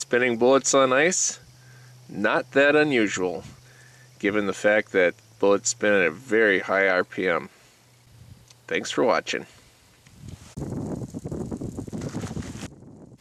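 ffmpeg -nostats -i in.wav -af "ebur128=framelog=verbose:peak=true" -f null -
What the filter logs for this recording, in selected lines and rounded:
Integrated loudness:
  I:         -22.9 LUFS
  Threshold: -34.4 LUFS
Loudness range:
  LRA:        12.3 LU
  Threshold: -44.5 LUFS
  LRA low:   -34.1 LUFS
  LRA high:  -21.9 LUFS
True peak:
  Peak:       -6.7 dBFS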